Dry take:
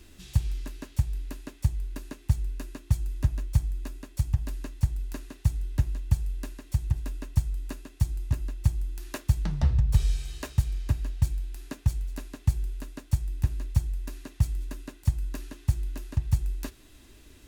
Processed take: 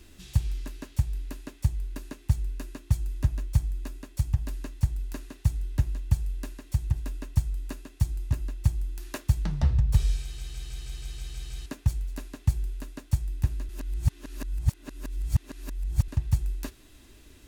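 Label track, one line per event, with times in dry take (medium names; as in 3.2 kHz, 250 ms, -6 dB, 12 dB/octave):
10.220000	10.220000	stutter in place 0.16 s, 9 plays
13.690000	16.080000	reverse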